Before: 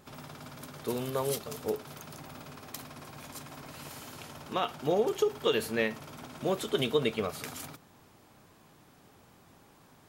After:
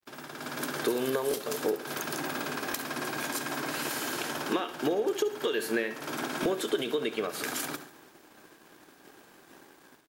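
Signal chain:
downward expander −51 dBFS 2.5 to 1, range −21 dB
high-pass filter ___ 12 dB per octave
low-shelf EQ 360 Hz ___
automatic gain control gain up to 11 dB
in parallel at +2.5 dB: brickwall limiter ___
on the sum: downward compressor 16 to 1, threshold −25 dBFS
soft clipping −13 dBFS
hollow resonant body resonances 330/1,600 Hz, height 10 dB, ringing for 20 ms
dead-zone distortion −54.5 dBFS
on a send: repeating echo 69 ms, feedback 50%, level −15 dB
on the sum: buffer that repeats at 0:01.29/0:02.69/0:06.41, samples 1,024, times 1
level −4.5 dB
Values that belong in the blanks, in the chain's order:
150 Hz, −10 dB, −13 dBFS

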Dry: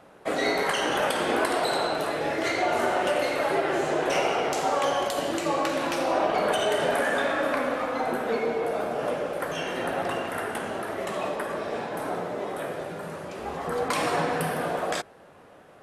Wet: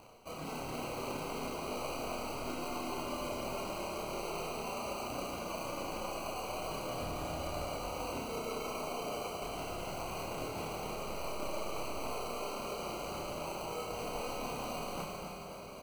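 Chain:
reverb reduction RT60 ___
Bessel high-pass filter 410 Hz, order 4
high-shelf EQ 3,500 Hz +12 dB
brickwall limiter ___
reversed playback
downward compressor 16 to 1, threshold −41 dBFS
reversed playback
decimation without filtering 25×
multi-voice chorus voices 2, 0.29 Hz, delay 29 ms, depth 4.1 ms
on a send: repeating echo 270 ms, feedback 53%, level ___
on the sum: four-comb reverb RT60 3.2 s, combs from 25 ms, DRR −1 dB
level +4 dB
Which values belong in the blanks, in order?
1 s, −14 dBFS, −8.5 dB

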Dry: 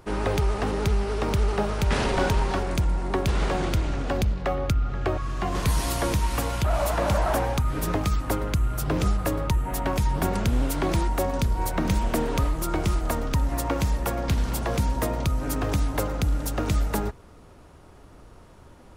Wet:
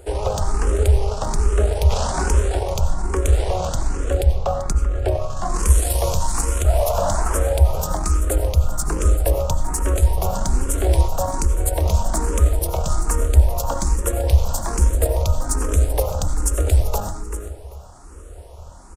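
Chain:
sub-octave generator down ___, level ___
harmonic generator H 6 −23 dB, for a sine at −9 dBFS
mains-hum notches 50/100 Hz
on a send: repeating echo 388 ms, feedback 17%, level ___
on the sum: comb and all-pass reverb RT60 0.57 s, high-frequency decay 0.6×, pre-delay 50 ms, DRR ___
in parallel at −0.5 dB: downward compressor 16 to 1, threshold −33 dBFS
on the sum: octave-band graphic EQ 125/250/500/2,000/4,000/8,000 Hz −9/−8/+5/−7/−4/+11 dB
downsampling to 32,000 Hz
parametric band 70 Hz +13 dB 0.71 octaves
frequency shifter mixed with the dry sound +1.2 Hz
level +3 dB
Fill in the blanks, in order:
2 octaves, +1 dB, −13 dB, 9 dB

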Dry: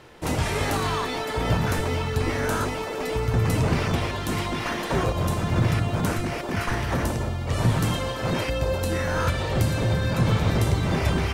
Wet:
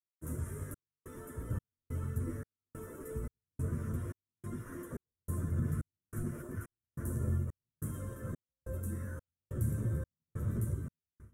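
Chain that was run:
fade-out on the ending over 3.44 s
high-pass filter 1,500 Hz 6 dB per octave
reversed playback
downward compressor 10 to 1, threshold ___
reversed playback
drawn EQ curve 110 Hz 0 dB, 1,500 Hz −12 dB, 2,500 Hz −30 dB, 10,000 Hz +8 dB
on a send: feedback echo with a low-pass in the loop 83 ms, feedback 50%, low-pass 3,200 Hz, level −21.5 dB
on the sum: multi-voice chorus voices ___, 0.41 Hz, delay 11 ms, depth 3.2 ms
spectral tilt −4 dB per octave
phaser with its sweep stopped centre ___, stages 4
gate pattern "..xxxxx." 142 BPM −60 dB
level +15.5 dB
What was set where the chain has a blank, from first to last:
−44 dBFS, 6, 1,900 Hz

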